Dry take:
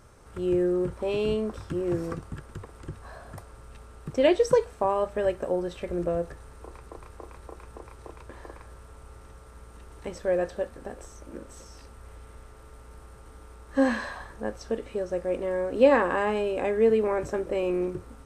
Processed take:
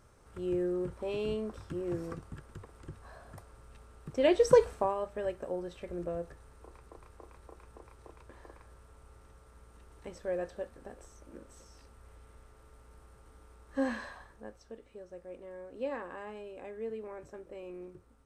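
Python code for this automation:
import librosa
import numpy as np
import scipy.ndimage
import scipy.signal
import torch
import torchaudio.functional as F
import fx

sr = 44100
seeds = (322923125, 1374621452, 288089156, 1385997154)

y = fx.gain(x, sr, db=fx.line((4.12, -7.5), (4.67, 2.0), (4.96, -9.0), (14.03, -9.0), (14.72, -18.0)))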